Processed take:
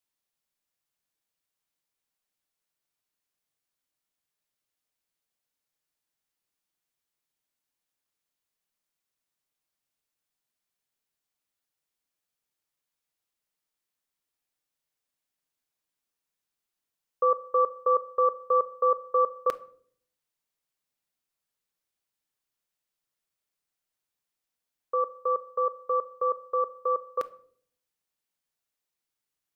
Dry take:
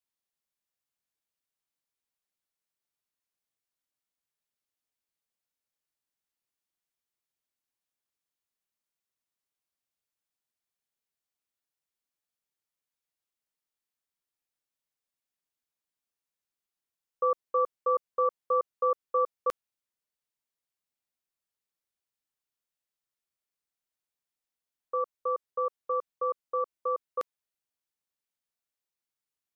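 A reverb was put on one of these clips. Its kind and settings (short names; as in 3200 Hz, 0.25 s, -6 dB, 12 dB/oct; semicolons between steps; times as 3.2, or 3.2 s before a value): shoebox room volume 790 m³, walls furnished, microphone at 0.48 m; gain +3.5 dB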